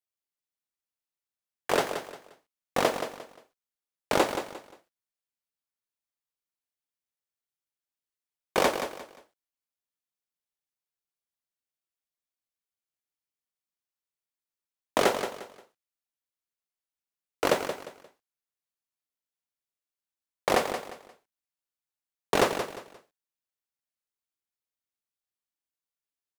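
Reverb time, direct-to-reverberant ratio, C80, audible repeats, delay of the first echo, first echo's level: no reverb, no reverb, no reverb, 3, 176 ms, -9.0 dB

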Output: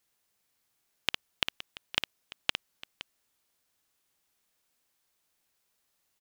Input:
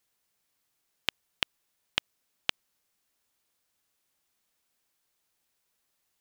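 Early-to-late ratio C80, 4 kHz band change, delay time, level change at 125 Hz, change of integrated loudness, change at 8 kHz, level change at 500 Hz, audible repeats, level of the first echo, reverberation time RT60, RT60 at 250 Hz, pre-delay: no reverb, +1.0 dB, 57 ms, +1.0 dB, +0.5 dB, +1.0 dB, +1.0 dB, 3, -7.0 dB, no reverb, no reverb, no reverb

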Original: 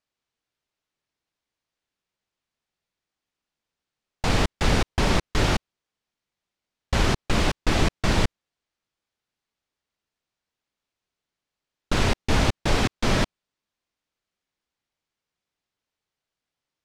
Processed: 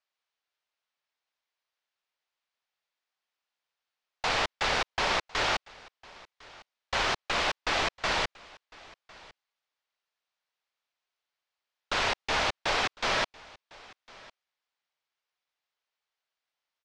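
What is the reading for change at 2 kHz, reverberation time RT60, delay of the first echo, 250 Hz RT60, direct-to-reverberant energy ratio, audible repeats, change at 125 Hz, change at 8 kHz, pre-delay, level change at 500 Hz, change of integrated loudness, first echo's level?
0.0 dB, no reverb, 1054 ms, no reverb, no reverb, 1, -19.5 dB, -5.5 dB, no reverb, -6.0 dB, -4.0 dB, -23.0 dB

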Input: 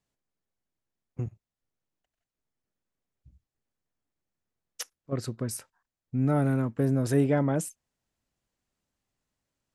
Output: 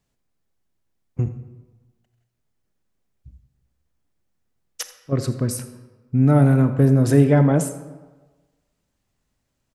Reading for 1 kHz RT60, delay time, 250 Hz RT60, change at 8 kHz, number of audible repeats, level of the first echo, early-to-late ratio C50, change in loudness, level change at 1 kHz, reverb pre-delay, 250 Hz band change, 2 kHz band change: 1.3 s, 83 ms, 1.2 s, +7.0 dB, 1, -17.0 dB, 10.0 dB, +10.0 dB, +7.5 dB, 28 ms, +9.0 dB, +7.0 dB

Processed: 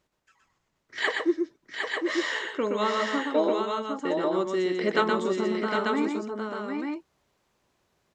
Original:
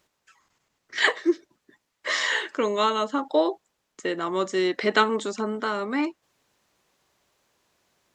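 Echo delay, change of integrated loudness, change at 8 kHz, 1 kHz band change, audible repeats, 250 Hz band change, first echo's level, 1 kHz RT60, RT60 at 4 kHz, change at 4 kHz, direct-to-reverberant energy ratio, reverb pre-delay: 121 ms, -2.0 dB, -6.0 dB, -2.0 dB, 3, +0.5 dB, -4.5 dB, no reverb, no reverb, -4.5 dB, no reverb, no reverb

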